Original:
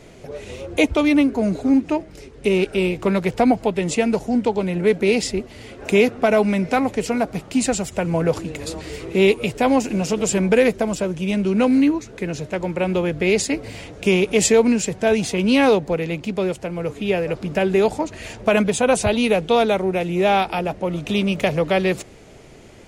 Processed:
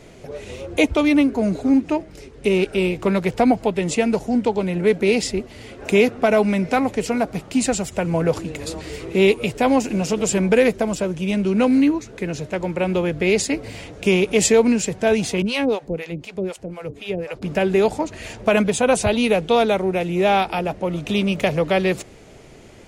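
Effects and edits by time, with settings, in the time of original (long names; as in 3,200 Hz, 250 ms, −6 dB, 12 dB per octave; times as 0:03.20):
0:15.42–0:17.42: two-band tremolo in antiphase 4 Hz, depth 100%, crossover 540 Hz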